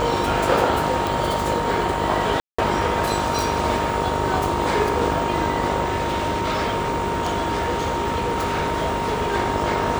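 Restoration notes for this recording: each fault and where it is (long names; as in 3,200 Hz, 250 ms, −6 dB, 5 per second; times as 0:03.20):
mains buzz 50 Hz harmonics 26 −27 dBFS
whistle 930 Hz −25 dBFS
0:01.07: click
0:02.40–0:02.58: drop-out 185 ms
0:03.39: click
0:05.84–0:09.35: clipping −18 dBFS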